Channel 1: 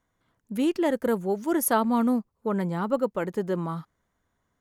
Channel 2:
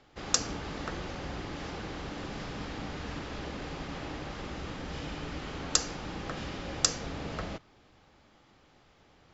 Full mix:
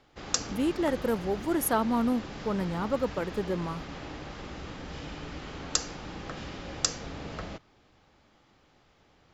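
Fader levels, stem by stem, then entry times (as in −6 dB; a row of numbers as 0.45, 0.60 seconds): −3.5, −1.5 decibels; 0.00, 0.00 seconds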